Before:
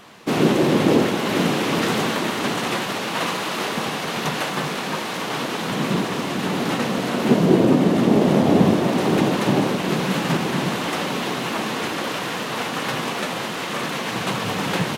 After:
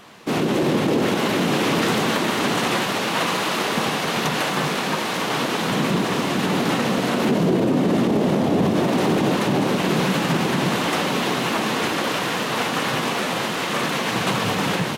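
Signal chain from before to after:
brickwall limiter −14 dBFS, peak gain reduction 10 dB
automatic gain control gain up to 3 dB

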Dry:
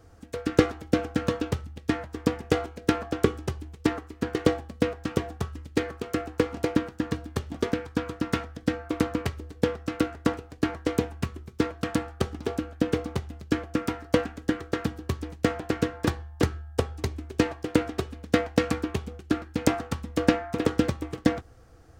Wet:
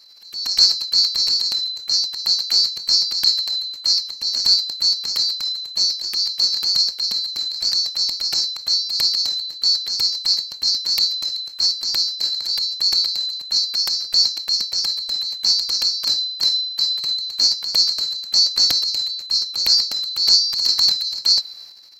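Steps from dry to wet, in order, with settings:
neighbouring bands swapped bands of 4,000 Hz
dynamic equaliser 4,400 Hz, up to +3 dB, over −36 dBFS, Q 5
transient designer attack −9 dB, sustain +9 dB
level +5.5 dB

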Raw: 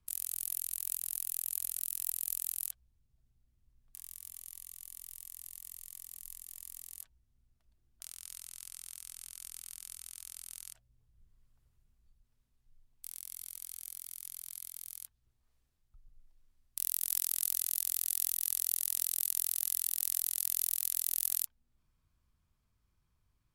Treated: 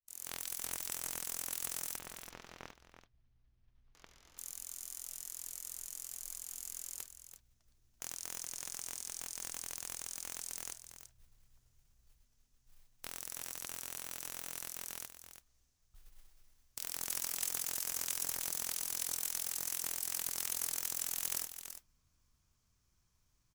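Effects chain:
fade in at the beginning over 0.62 s
parametric band 6,200 Hz +13 dB 0.76 octaves
mains-hum notches 50/100/150/200 Hz
wrap-around overflow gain 18 dB
noise that follows the level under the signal 14 dB
soft clipping −21.5 dBFS, distortion −16 dB
0:01.96–0:04.38: high-frequency loss of the air 260 metres
single-tap delay 333 ms −10 dB

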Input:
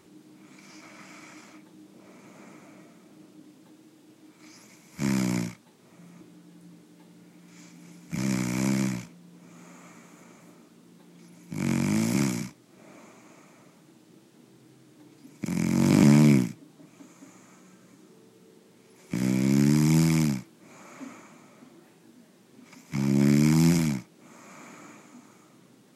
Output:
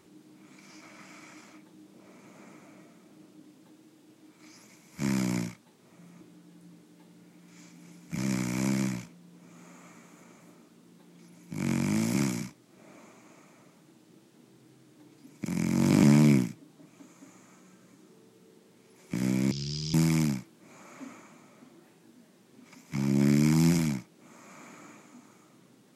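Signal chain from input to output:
0:19.51–0:19.94: drawn EQ curve 110 Hz 0 dB, 280 Hz −27 dB, 400 Hz −7 dB, 640 Hz −29 dB, 1,200 Hz −18 dB, 2,100 Hz −19 dB, 3,000 Hz +3 dB, 4,900 Hz +8 dB, 11,000 Hz −26 dB
level −2.5 dB

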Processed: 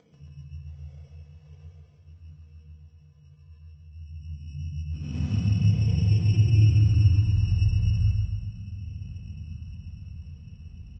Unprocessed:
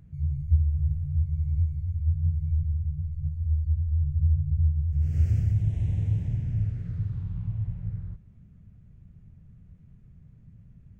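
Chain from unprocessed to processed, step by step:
reverb reduction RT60 0.51 s
high-pass filter sweep 450 Hz → 67 Hz, 0:03.91–0:07.30
soft clipping −14 dBFS, distortion −23 dB
phase shifter 0.22 Hz, delay 3.6 ms, feedback 37%
decimation without filtering 16×
repeating echo 139 ms, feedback 53%, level −4 dB
rectangular room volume 2,500 cubic metres, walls furnished, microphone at 1.9 metres
level +2.5 dB
Ogg Vorbis 48 kbit/s 16,000 Hz

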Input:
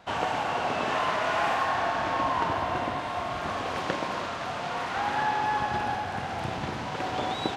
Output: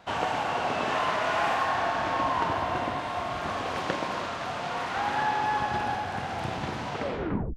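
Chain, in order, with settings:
turntable brake at the end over 0.67 s

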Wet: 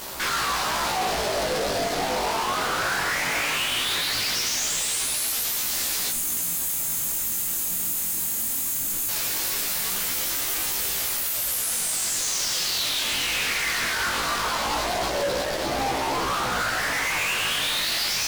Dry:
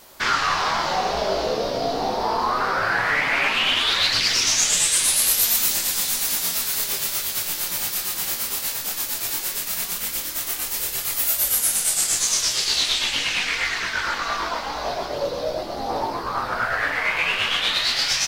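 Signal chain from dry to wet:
gain on a spectral selection 0:06.11–0:09.08, 360–6,200 Hz −27 dB
fuzz pedal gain 44 dB, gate −50 dBFS
chorus effect 0.19 Hz, delay 15 ms, depth 7.2 ms
level −8.5 dB

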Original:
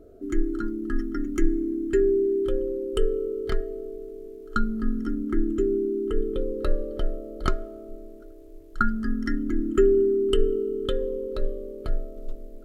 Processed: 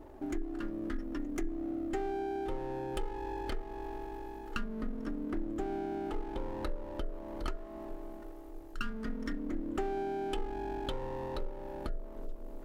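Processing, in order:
lower of the sound and its delayed copy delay 3.3 ms
downward compressor 3 to 1, threshold −36 dBFS, peak gain reduction 15.5 dB

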